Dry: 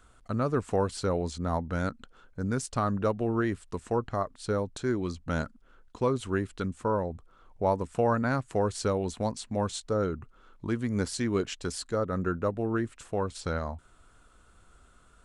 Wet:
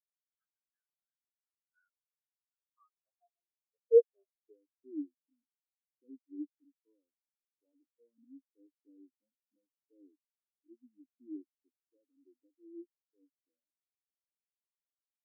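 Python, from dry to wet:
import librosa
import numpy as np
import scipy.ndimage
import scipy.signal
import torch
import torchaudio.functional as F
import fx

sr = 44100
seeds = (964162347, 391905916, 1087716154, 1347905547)

y = np.clip(x, -10.0 ** (-26.0 / 20.0), 10.0 ** (-26.0 / 20.0))
y = fx.filter_sweep_highpass(y, sr, from_hz=1600.0, to_hz=290.0, start_s=1.93, end_s=4.75, q=8.0)
y = scipy.signal.sosfilt(scipy.signal.cheby1(5, 1.0, [110.0, 2200.0], 'bandpass', fs=sr, output='sos'), y)
y = fx.spectral_expand(y, sr, expansion=4.0)
y = y * 10.0 ** (-3.5 / 20.0)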